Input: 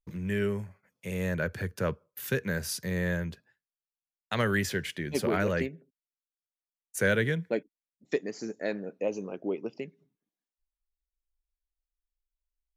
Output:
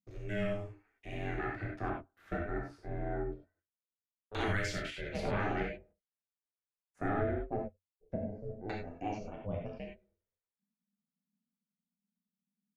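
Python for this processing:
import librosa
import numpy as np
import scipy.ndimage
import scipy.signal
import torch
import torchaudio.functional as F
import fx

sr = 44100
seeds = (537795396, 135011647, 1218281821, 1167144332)

y = x * np.sin(2.0 * np.pi * 210.0 * np.arange(len(x)) / sr)
y = fx.peak_eq(y, sr, hz=93.0, db=6.0, octaves=0.27)
y = fx.rev_gated(y, sr, seeds[0], gate_ms=120, shape='flat', drr_db=-2.0)
y = fx.filter_lfo_lowpass(y, sr, shape='saw_down', hz=0.23, low_hz=420.0, high_hz=5900.0, q=1.0)
y = fx.high_shelf(y, sr, hz=9000.0, db=11.0)
y = y * 10.0 ** (-7.5 / 20.0)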